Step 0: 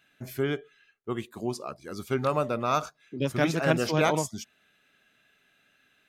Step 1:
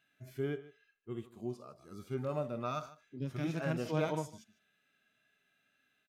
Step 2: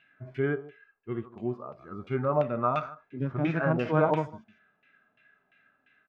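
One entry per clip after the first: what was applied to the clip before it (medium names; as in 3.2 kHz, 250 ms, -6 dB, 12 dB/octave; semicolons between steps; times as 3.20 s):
delay 151 ms -20 dB; harmonic-percussive split percussive -17 dB; trim -6.5 dB
LFO low-pass saw down 2.9 Hz 820–2600 Hz; trim +7.5 dB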